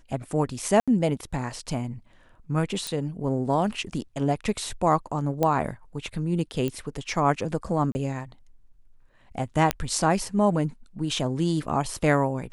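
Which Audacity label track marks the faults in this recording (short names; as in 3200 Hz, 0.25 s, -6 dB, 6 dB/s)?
0.800000	0.880000	gap 76 ms
2.870000	2.870000	pop
5.430000	5.430000	pop -11 dBFS
6.680000	6.680000	pop -16 dBFS
7.920000	7.950000	gap 30 ms
9.710000	9.710000	pop -6 dBFS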